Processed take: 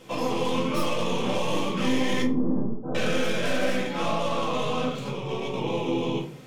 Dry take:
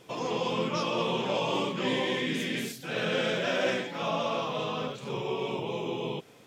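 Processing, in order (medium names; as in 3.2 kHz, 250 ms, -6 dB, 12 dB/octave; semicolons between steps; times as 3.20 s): tracing distortion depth 0.091 ms; 2.22–2.95 s: steep low-pass 1.1 kHz 48 dB/octave; 5.10–5.54 s: gate -31 dBFS, range -7 dB; compression, threshold -30 dBFS, peak gain reduction 7.5 dB; simulated room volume 240 m³, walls furnished, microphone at 2.1 m; trim +2.5 dB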